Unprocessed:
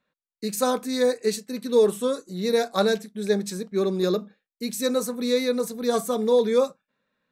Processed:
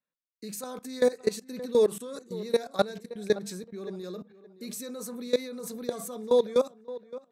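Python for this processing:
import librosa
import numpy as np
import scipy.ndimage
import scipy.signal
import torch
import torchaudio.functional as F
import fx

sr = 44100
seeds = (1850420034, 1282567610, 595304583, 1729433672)

y = fx.level_steps(x, sr, step_db=19)
y = fx.echo_tape(y, sr, ms=570, feedback_pct=21, wet_db=-15.5, lp_hz=2200.0, drive_db=7.0, wow_cents=21)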